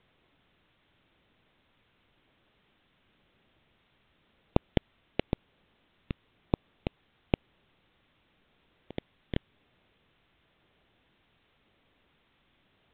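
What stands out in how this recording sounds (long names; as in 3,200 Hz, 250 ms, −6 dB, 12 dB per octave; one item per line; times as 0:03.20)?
aliases and images of a low sample rate 1,400 Hz, jitter 20%
phaser sweep stages 2, 0.95 Hz, lowest notch 800–1,800 Hz
a quantiser's noise floor 12 bits, dither triangular
mu-law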